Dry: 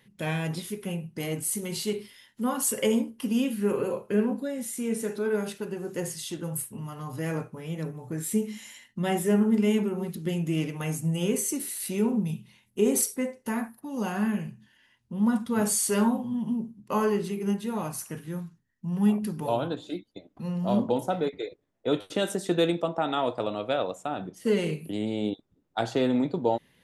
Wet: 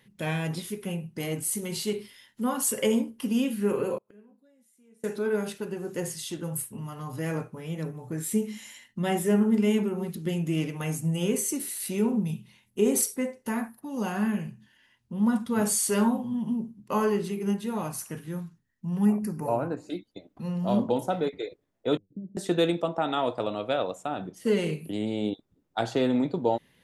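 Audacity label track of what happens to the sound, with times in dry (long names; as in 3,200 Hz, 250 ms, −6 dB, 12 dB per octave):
3.980000	5.040000	gate with flip shuts at −34 dBFS, range −30 dB
19.050000	19.900000	Butterworth band-reject 3,400 Hz, Q 1.4
21.970000	22.370000	transistor ladder low-pass 230 Hz, resonance 40%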